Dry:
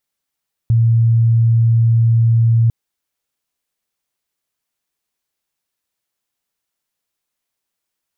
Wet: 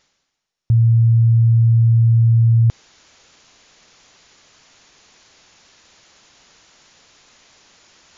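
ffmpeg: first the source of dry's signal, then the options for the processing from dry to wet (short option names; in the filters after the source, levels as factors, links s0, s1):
-f lavfi -i "aevalsrc='0.355*sin(2*PI*115*t)':d=2:s=44100"
-af "areverse,acompressor=mode=upward:threshold=0.0794:ratio=2.5,areverse" -ar 22050 -c:a mp2 -b:a 96k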